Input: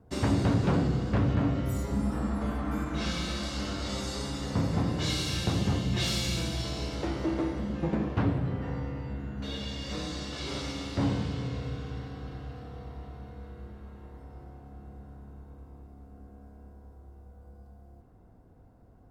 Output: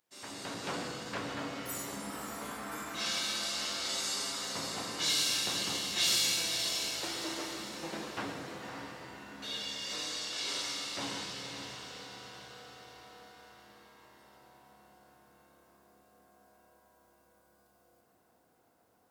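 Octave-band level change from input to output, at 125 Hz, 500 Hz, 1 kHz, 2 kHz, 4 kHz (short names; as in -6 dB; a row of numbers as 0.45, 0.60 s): -22.5, -8.0, -3.0, +1.0, +4.5 dB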